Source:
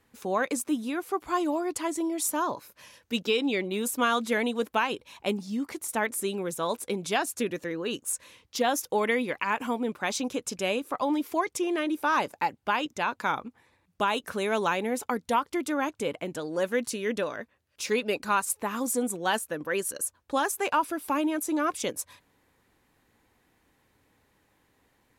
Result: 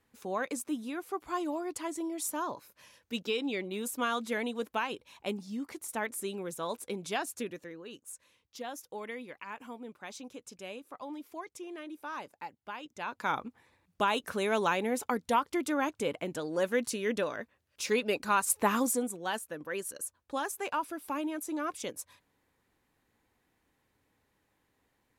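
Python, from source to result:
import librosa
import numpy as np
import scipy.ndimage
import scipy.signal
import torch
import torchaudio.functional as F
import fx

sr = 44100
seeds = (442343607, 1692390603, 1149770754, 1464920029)

y = fx.gain(x, sr, db=fx.line((7.34, -6.5), (7.88, -15.0), (12.82, -15.0), (13.35, -2.0), (18.37, -2.0), (18.69, 5.0), (19.13, -7.5)))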